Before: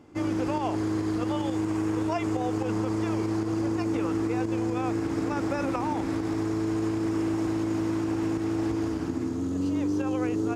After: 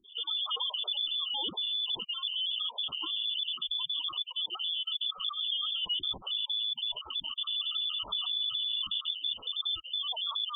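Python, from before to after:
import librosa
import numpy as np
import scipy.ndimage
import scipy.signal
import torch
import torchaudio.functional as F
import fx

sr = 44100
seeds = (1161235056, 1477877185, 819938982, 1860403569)

p1 = fx.spec_dropout(x, sr, seeds[0], share_pct=52)
p2 = scipy.signal.sosfilt(scipy.signal.butter(2, 720.0, 'highpass', fs=sr, output='sos'), p1)
p3 = fx.freq_invert(p2, sr, carrier_hz=3800)
p4 = fx.spec_gate(p3, sr, threshold_db=-15, keep='strong')
p5 = fx.over_compress(p4, sr, threshold_db=-44.0, ratio=-0.5)
p6 = p4 + F.gain(torch.from_numpy(p5), 3.0).numpy()
p7 = scipy.signal.sosfilt(scipy.signal.cheby1(5, 1.0, [1300.0, 2900.0], 'bandstop', fs=sr, output='sos'), p6)
y = F.gain(torch.from_numpy(p7), 4.0).numpy()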